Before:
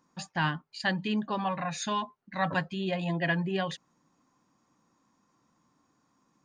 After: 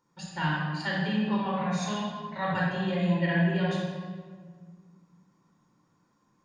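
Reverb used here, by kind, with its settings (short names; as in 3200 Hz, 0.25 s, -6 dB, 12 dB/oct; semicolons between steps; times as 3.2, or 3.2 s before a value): shoebox room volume 2000 m³, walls mixed, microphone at 4.5 m; gain -7 dB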